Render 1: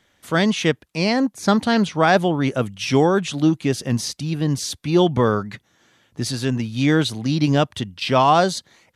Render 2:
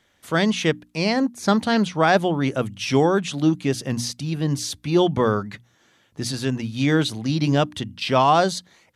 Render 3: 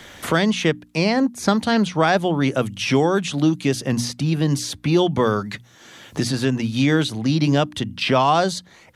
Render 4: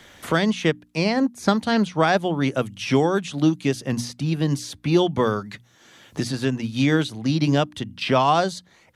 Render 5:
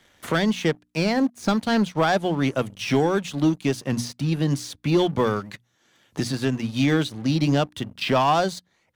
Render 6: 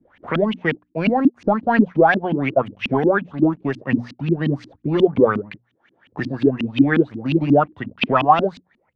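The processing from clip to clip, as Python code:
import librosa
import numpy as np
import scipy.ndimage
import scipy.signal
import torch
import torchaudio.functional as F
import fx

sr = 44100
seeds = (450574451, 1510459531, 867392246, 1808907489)

y1 = fx.hum_notches(x, sr, base_hz=60, count=5)
y1 = y1 * librosa.db_to_amplitude(-1.5)
y2 = fx.band_squash(y1, sr, depth_pct=70)
y2 = y2 * librosa.db_to_amplitude(1.0)
y3 = fx.upward_expand(y2, sr, threshold_db=-26.0, expansion=1.5)
y4 = fx.leveller(y3, sr, passes=2)
y4 = y4 * librosa.db_to_amplitude(-7.5)
y5 = fx.filter_lfo_lowpass(y4, sr, shape='saw_up', hz=5.6, low_hz=210.0, high_hz=3000.0, q=6.3)
y5 = y5 * librosa.db_to_amplitude(-1.0)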